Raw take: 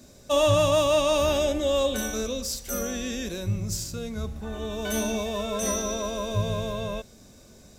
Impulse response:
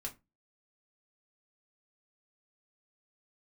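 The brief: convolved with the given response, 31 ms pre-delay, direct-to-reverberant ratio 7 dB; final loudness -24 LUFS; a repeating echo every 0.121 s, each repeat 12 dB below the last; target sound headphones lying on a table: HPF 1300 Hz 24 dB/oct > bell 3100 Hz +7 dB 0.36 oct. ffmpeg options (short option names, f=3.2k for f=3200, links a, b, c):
-filter_complex "[0:a]aecho=1:1:121|242|363:0.251|0.0628|0.0157,asplit=2[a][b];[1:a]atrim=start_sample=2205,adelay=31[c];[b][c]afir=irnorm=-1:irlink=0,volume=-5.5dB[d];[a][d]amix=inputs=2:normalize=0,highpass=f=1.3k:w=0.5412,highpass=f=1.3k:w=1.3066,equalizer=f=3.1k:t=o:w=0.36:g=7,volume=5.5dB"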